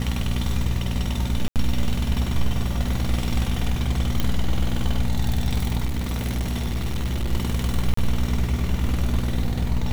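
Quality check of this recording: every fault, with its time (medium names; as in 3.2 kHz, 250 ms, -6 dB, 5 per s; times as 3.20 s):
hum 60 Hz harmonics 4 -26 dBFS
1.48–1.56 s: dropout 78 ms
4.20 s: pop
5.85–7.33 s: clipped -20.5 dBFS
7.94–7.97 s: dropout 34 ms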